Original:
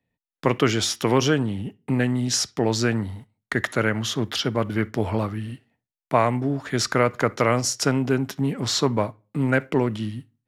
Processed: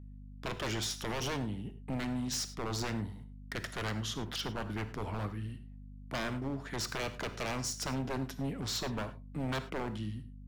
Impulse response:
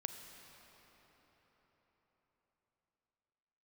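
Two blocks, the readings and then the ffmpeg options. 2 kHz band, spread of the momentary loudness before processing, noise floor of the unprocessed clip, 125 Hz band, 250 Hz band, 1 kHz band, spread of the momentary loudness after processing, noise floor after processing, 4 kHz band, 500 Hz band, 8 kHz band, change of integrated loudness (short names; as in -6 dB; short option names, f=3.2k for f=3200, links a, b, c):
-13.0 dB, 8 LU, under -85 dBFS, -12.5 dB, -14.0 dB, -13.5 dB, 7 LU, -49 dBFS, -11.0 dB, -17.0 dB, -11.5 dB, -13.5 dB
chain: -filter_complex "[0:a]aeval=exprs='0.119*(abs(mod(val(0)/0.119+3,4)-2)-1)':c=same,aeval=exprs='val(0)+0.0158*(sin(2*PI*50*n/s)+sin(2*PI*2*50*n/s)/2+sin(2*PI*3*50*n/s)/3+sin(2*PI*4*50*n/s)/4+sin(2*PI*5*50*n/s)/5)':c=same[a];[1:a]atrim=start_sample=2205,afade=t=out:st=0.16:d=0.01,atrim=end_sample=7497[b];[a][b]afir=irnorm=-1:irlink=0,volume=-8.5dB"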